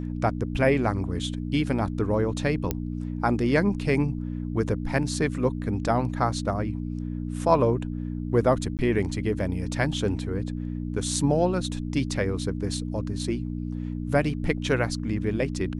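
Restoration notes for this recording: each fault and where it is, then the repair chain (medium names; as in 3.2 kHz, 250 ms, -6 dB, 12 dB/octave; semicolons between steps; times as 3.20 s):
hum 60 Hz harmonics 5 -31 dBFS
2.71 s: pop -11 dBFS
8.77–8.79 s: dropout 18 ms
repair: de-click; de-hum 60 Hz, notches 5; interpolate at 8.77 s, 18 ms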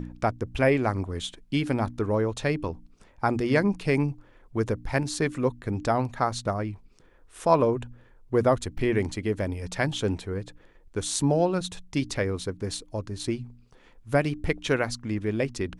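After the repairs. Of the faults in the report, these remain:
nothing left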